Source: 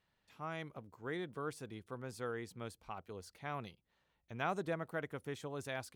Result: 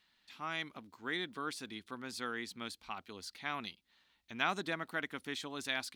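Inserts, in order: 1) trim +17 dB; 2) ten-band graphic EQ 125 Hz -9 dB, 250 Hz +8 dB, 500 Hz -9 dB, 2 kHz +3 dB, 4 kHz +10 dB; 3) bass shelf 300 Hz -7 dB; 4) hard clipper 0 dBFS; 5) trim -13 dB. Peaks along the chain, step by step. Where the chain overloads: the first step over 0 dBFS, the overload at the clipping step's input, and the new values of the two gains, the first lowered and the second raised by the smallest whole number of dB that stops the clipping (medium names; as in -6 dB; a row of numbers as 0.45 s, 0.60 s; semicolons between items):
-6.5 dBFS, -3.0 dBFS, -3.0 dBFS, -3.0 dBFS, -16.0 dBFS; nothing clips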